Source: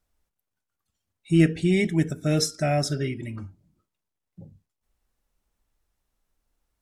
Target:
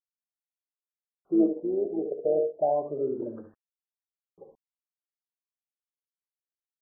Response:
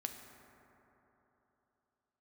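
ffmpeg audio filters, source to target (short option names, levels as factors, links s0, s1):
-filter_complex "[0:a]asettb=1/sr,asplit=3[s0][s1][s2];[s0]atrim=end=3.194[s3];[s1]atrim=start=3.19:end=4.42,asetpts=PTS-STARTPTS,afade=t=in:d=0.004:c=qsin,afade=t=out:st=1.226:d=0.004:c=qsin,equalizer=f=1200:w=1.5:g=-6.5[s4];[s2]atrim=start=4.416[s5];[s3][s4]acrossfade=d=0.004:c1=hsin:c2=qsin[s6];[s6][s5]acrossfade=d=0.004:c1=qsin:c2=hsin,asplit=2[s7][s8];[s8]acompressor=threshold=0.0355:ratio=6,volume=0.891[s9];[s7][s9]amix=inputs=2:normalize=0,aphaser=in_gain=1:out_gain=1:delay=3.4:decay=0.63:speed=0.31:type=triangular,highpass=f=480:t=q:w=4.9,asettb=1/sr,asplit=3[s10][s11][s12];[s10]atrim=end=1.344[s13];[s11]atrim=start=1.34:end=2.5,asetpts=PTS-STARTPTS,afade=t=in:d=0.004:c=qsin,afade=t=out:st=1.156:d=0.004:c=qsin,tremolo=f=110:d=0.4[s14];[s12]atrim=start=2.496[s15];[s13][s14]acrossfade=d=0.004:c1=hsin:c2=qsin[s16];[s16][s15]acrossfade=d=0.004:c1=qsin:c2=hsin,aecho=1:1:58|71:0.168|0.335,acrusher=bits=8:mix=0:aa=0.000001,afftfilt=real='re*lt(b*sr/1024,780*pow(1900/780,0.5+0.5*sin(2*PI*0.34*pts/sr)))':imag='im*lt(b*sr/1024,780*pow(1900/780,0.5+0.5*sin(2*PI*0.34*pts/sr)))':win_size=1024:overlap=0.75,volume=0.447"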